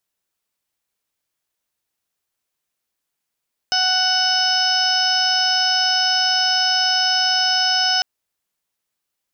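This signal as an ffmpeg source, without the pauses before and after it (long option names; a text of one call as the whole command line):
ffmpeg -f lavfi -i "aevalsrc='0.0708*sin(2*PI*743*t)+0.0668*sin(2*PI*1486*t)+0.0141*sin(2*PI*2229*t)+0.0708*sin(2*PI*2972*t)+0.0211*sin(2*PI*3715*t)+0.0282*sin(2*PI*4458*t)+0.126*sin(2*PI*5201*t)+0.0355*sin(2*PI*5944*t)':duration=4.3:sample_rate=44100" out.wav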